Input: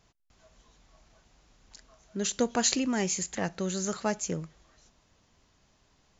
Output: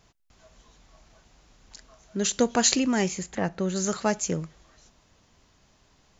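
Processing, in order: 3.08–3.76 s: treble shelf 3.2 kHz -12 dB; trim +4.5 dB

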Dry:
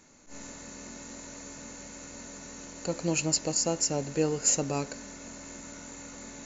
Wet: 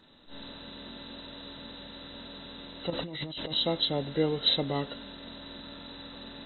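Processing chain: knee-point frequency compression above 1.2 kHz 1.5:1; 2.90–3.54 s: compressor with a negative ratio -37 dBFS, ratio -1

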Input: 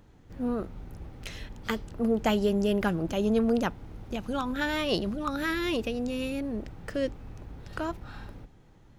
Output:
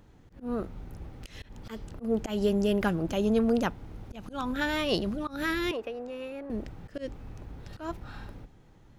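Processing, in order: slow attack 148 ms; 5.71–6.50 s: three-band isolator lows -19 dB, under 380 Hz, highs -16 dB, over 2.1 kHz

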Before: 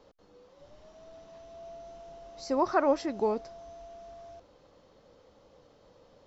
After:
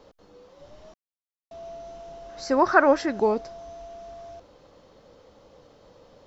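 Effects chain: 0.94–1.51 s: mute; 2.29–3.20 s: peaking EQ 1.6 kHz +11 dB 0.5 oct; trim +6 dB

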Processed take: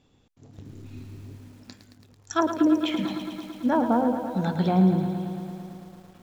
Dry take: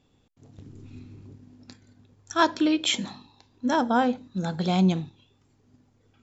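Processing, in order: low-pass that closes with the level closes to 510 Hz, closed at -17.5 dBFS; 2.33–4.00 s: crackle 120 per s -41 dBFS; bit-crushed delay 111 ms, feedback 80%, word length 9-bit, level -9 dB; trim +2 dB

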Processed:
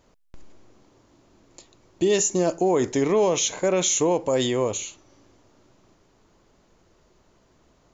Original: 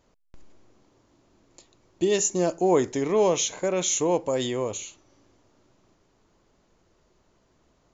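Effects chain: peak limiter -17 dBFS, peak gain reduction 7 dB; trim +4.5 dB

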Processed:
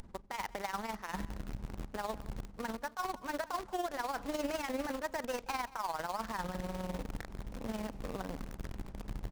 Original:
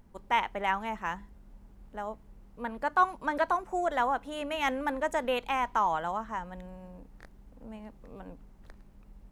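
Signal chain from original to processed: median filter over 15 samples; low-pass 9.3 kHz 12 dB/octave; treble shelf 2.1 kHz +5.5 dB; reverse; compression 16:1, threshold -42 dBFS, peak gain reduction 24 dB; reverse; peak limiter -43.5 dBFS, peak gain reduction 11 dB; in parallel at -4 dB: word length cut 8-bit, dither none; on the sum: AM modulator 20 Hz, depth 50%; delay 179 ms -20.5 dB; transformer saturation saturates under 90 Hz; trim +12.5 dB

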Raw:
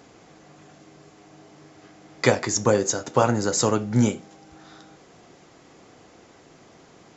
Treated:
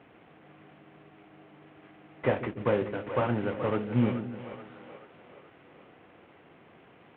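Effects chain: CVSD coder 16 kbps; high-pass 63 Hz; two-band feedback delay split 450 Hz, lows 145 ms, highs 429 ms, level -10 dB; trim -5 dB

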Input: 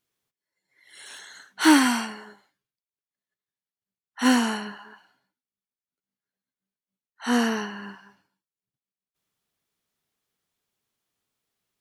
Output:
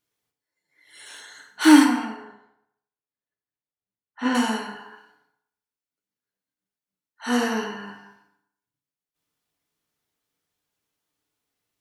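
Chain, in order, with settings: 1.84–4.35 s: tape spacing loss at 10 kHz 25 dB; FDN reverb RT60 0.76 s, low-frequency decay 0.85×, high-frequency decay 0.65×, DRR 1.5 dB; trim -1.5 dB

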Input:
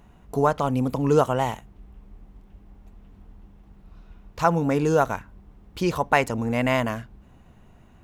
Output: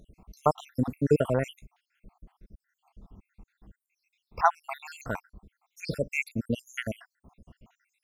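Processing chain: random holes in the spectrogram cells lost 76%

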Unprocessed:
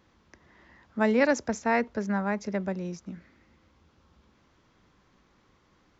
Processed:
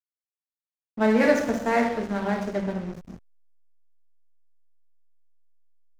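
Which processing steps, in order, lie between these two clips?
two-slope reverb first 0.94 s, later 2.7 s, DRR -1.5 dB; hysteresis with a dead band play -28 dBFS

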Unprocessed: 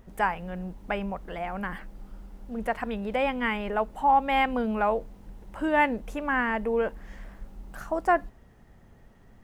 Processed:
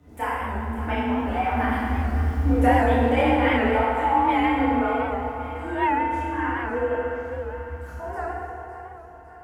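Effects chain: Doppler pass-by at 2.26 s, 8 m/s, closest 4 m; in parallel at +2 dB: compression, threshold -45 dBFS, peak gain reduction 19 dB; on the sum: frequency shift +39 Hz; chorus voices 6, 1.2 Hz, delay 27 ms, depth 3 ms; two-band feedback delay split 390 Hz, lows 145 ms, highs 556 ms, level -11.5 dB; FDN reverb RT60 2.5 s, low-frequency decay 1.2×, high-frequency decay 0.55×, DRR -9 dB; warped record 78 rpm, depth 100 cents; trim +4.5 dB

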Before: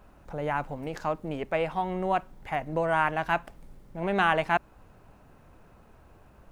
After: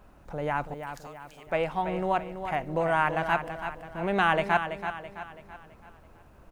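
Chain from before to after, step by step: 0.74–1.47 s: differentiator; feedback delay 331 ms, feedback 45%, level -9 dB

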